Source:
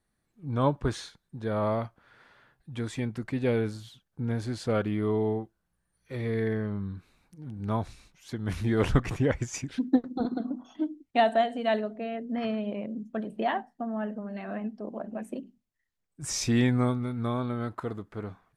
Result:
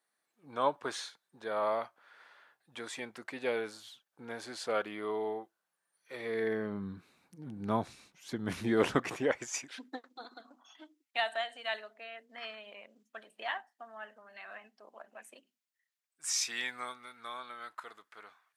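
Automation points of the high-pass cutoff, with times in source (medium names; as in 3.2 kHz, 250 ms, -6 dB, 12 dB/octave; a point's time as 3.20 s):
6.14 s 600 Hz
6.90 s 190 Hz
8.48 s 190 Hz
9.53 s 560 Hz
10.12 s 1.4 kHz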